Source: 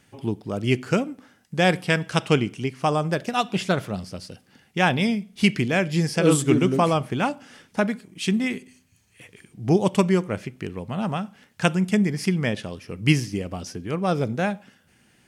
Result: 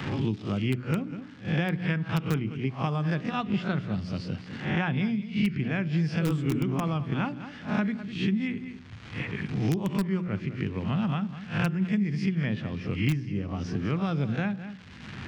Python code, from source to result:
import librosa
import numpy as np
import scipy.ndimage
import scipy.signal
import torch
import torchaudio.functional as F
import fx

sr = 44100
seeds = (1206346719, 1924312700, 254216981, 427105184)

p1 = fx.spec_swells(x, sr, rise_s=0.3)
p2 = p1 + fx.echo_single(p1, sr, ms=202, db=-17.5, dry=0)
p3 = fx.dmg_crackle(p2, sr, seeds[0], per_s=440.0, level_db=-38.0)
p4 = scipy.signal.sosfilt(scipy.signal.butter(2, 70.0, 'highpass', fs=sr, output='sos'), p3)
p5 = fx.spacing_loss(p4, sr, db_at_10k=42)
p6 = fx.hum_notches(p5, sr, base_hz=60, count=7)
p7 = (np.mod(10.0 ** (10.5 / 20.0) * p6 + 1.0, 2.0) - 1.0) / 10.0 ** (10.5 / 20.0)
p8 = p6 + (p7 * 10.0 ** (-12.0 / 20.0))
p9 = fx.peak_eq(p8, sr, hz=580.0, db=-15.0, octaves=2.1)
y = fx.band_squash(p9, sr, depth_pct=100)